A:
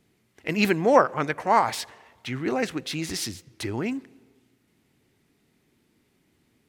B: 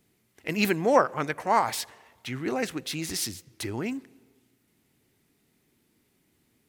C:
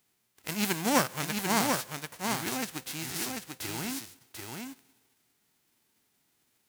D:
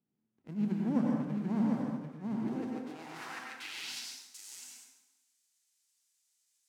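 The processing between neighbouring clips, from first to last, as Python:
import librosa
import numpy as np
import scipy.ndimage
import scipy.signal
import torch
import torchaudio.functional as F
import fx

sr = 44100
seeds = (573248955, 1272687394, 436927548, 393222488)

y1 = fx.high_shelf(x, sr, hz=8500.0, db=10.5)
y1 = y1 * librosa.db_to_amplitude(-3.0)
y2 = fx.envelope_flatten(y1, sr, power=0.3)
y2 = y2 + 10.0 ** (-4.5 / 20.0) * np.pad(y2, (int(741 * sr / 1000.0), 0))[:len(y2)]
y2 = y2 * librosa.db_to_amplitude(-5.0)
y3 = fx.filter_sweep_bandpass(y2, sr, from_hz=210.0, to_hz=7000.0, start_s=2.32, end_s=4.16, q=1.9)
y3 = fx.rev_plate(y3, sr, seeds[0], rt60_s=1.0, hf_ratio=0.75, predelay_ms=80, drr_db=-1.0)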